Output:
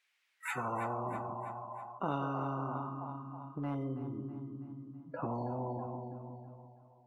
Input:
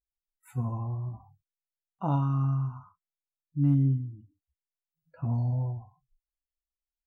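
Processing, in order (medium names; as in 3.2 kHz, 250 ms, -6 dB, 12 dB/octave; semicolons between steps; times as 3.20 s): high-pass 160 Hz 12 dB/octave; dynamic bell 390 Hz, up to -7 dB, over -43 dBFS, Q 0.78; band-pass sweep 2.2 kHz -> 310 Hz, 0.33–1.43 s; two-band feedback delay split 620 Hz, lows 176 ms, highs 325 ms, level -14 dB; spectrum-flattening compressor 4:1; trim +5.5 dB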